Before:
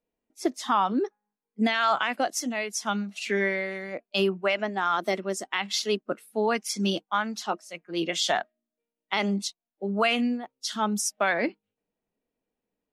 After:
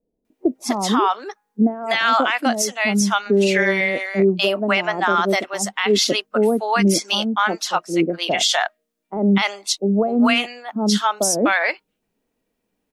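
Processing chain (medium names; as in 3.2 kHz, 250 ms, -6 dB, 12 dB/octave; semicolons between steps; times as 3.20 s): 3.00–3.81 s: comb 4.9 ms, depth 69%; bands offset in time lows, highs 250 ms, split 630 Hz; loudness maximiser +18.5 dB; trim -7 dB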